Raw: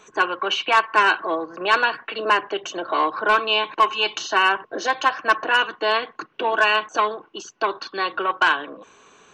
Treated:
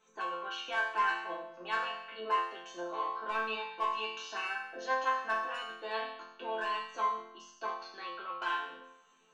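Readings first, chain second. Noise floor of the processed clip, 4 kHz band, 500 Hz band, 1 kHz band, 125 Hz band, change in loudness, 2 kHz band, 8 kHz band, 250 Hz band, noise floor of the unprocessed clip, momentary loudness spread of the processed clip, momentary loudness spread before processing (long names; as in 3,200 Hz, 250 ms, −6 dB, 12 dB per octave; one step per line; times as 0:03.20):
−64 dBFS, −18.0 dB, −15.0 dB, −13.0 dB, can't be measured, −14.5 dB, −15.5 dB, −16.5 dB, −17.0 dB, −55 dBFS, 10 LU, 9 LU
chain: resonators tuned to a chord F3 major, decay 0.79 s
level +5 dB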